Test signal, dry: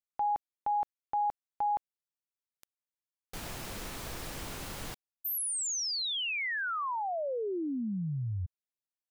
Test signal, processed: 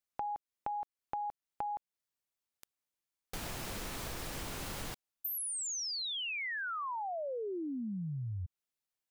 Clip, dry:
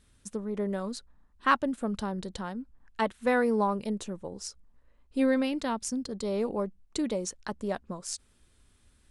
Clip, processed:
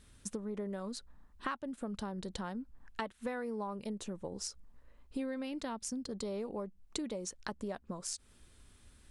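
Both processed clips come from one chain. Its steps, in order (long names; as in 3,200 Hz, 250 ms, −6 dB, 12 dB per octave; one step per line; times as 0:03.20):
downward compressor 6 to 1, threshold −40 dBFS
level +3 dB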